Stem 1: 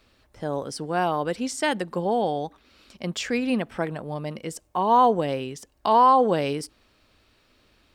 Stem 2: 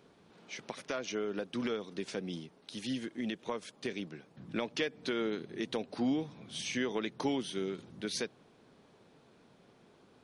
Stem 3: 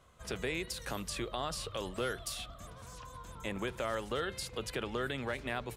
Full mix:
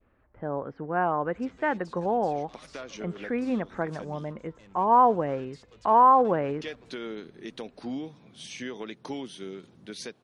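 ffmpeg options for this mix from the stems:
ffmpeg -i stem1.wav -i stem2.wav -i stem3.wav -filter_complex "[0:a]lowpass=frequency=1900:width=0.5412,lowpass=frequency=1900:width=1.3066,adynamicequalizer=threshold=0.0251:dfrequency=1400:dqfactor=0.78:tfrequency=1400:tqfactor=0.78:attack=5:release=100:ratio=0.375:range=2:mode=boostabove:tftype=bell,volume=-3.5dB,asplit=2[link_01][link_02];[1:a]adelay=1850,volume=-3dB,asplit=3[link_03][link_04][link_05];[link_03]atrim=end=4.33,asetpts=PTS-STARTPTS,afade=type=out:start_time=4.326:duration=0.004:curve=hsin[link_06];[link_04]atrim=start=4.33:end=6.49,asetpts=PTS-STARTPTS,volume=0[link_07];[link_05]atrim=start=6.49,asetpts=PTS-STARTPTS,afade=type=in:duration=0.004:curve=hsin[link_08];[link_06][link_07][link_08]concat=n=3:v=0:a=1[link_09];[2:a]asoftclip=type=hard:threshold=-38dB,lowpass=frequency=7300:width=0.5412,lowpass=frequency=7300:width=1.3066,adelay=1150,volume=-12dB[link_10];[link_02]apad=whole_len=533117[link_11];[link_09][link_11]sidechaincompress=threshold=-38dB:ratio=8:attack=27:release=130[link_12];[link_01][link_12][link_10]amix=inputs=3:normalize=0" out.wav

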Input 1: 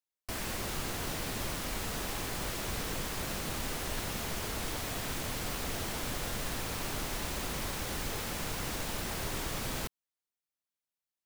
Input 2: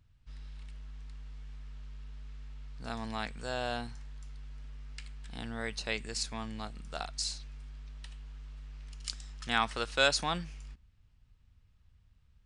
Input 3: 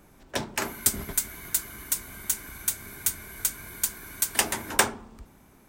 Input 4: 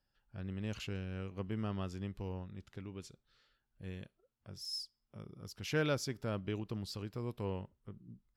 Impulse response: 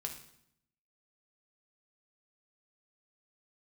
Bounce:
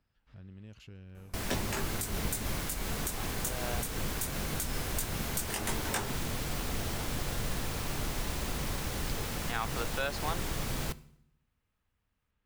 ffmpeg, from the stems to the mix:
-filter_complex "[0:a]adelay=1050,volume=-3dB,asplit=2[link_01][link_02];[link_02]volume=-9dB[link_03];[1:a]acrossover=split=250 2900:gain=0.0794 1 0.251[link_04][link_05][link_06];[link_04][link_05][link_06]amix=inputs=3:normalize=0,volume=-2dB[link_07];[2:a]flanger=delay=17.5:depth=2.9:speed=1.5,adelay=1150,volume=-2dB[link_08];[3:a]acompressor=threshold=-55dB:ratio=2,volume=-3dB,asplit=2[link_09][link_10];[link_10]apad=whole_len=549101[link_11];[link_07][link_11]sidechaincompress=threshold=-59dB:ratio=8:attack=16:release=1390[link_12];[4:a]atrim=start_sample=2205[link_13];[link_03][link_13]afir=irnorm=-1:irlink=0[link_14];[link_01][link_12][link_08][link_09][link_14]amix=inputs=5:normalize=0,lowshelf=frequency=210:gain=6,alimiter=limit=-20dB:level=0:latency=1:release=161"

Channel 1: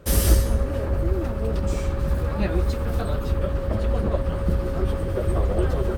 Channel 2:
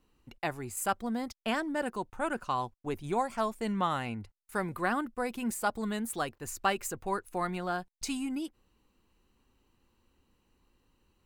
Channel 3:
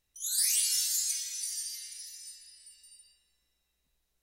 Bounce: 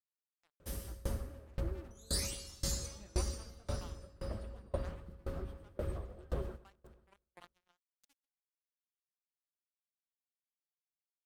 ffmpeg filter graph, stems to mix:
ffmpeg -i stem1.wav -i stem2.wav -i stem3.wav -filter_complex "[0:a]adelay=600,volume=-11dB,asplit=2[link_01][link_02];[link_02]volume=-11.5dB[link_03];[1:a]acrusher=bits=3:mix=0:aa=0.5,volume=-18dB[link_04];[2:a]equalizer=frequency=12000:width_type=o:width=1.3:gain=-13.5,adelay=1750,volume=2dB[link_05];[link_03]aecho=0:1:121|242|363|484|605|726|847|968|1089:1|0.58|0.336|0.195|0.113|0.0656|0.0381|0.0221|0.0128[link_06];[link_01][link_04][link_05][link_06]amix=inputs=4:normalize=0,aeval=exprs='val(0)*pow(10,-27*if(lt(mod(1.9*n/s,1),2*abs(1.9)/1000),1-mod(1.9*n/s,1)/(2*abs(1.9)/1000),(mod(1.9*n/s,1)-2*abs(1.9)/1000)/(1-2*abs(1.9)/1000))/20)':channel_layout=same" out.wav

